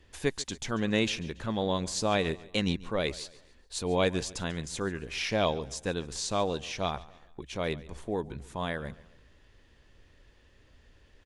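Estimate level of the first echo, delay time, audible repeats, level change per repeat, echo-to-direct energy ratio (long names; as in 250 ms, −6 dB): −20.0 dB, 141 ms, 2, −7.5 dB, −19.0 dB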